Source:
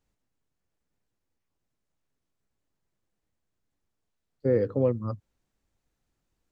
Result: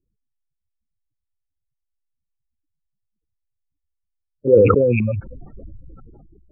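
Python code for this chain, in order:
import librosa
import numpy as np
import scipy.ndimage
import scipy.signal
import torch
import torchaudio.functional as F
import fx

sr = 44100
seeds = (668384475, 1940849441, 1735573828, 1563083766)

p1 = fx.rattle_buzz(x, sr, strikes_db=-34.0, level_db=-21.0)
p2 = fx.level_steps(p1, sr, step_db=10)
p3 = p1 + F.gain(torch.from_numpy(p2), 3.0).numpy()
p4 = fx.spec_gate(p3, sr, threshold_db=-15, keep='strong')
p5 = fx.filter_lfo_lowpass(p4, sr, shape='saw_up', hz=3.8, low_hz=330.0, high_hz=2000.0, q=6.7)
p6 = fx.sustainer(p5, sr, db_per_s=23.0)
y = F.gain(torch.from_numpy(p6), -4.0).numpy()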